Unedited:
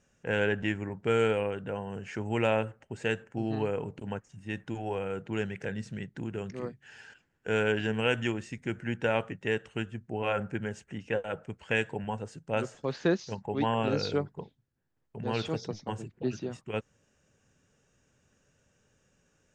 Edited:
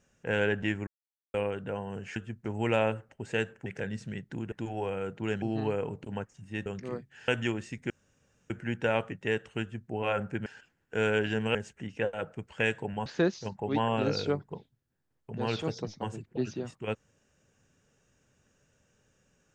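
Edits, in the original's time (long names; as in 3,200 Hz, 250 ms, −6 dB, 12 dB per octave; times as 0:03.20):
0:00.87–0:01.34: silence
0:03.37–0:04.61: swap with 0:05.51–0:06.37
0:06.99–0:08.08: move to 0:10.66
0:08.70: splice in room tone 0.60 s
0:09.81–0:10.10: duplicate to 0:02.16
0:12.17–0:12.92: remove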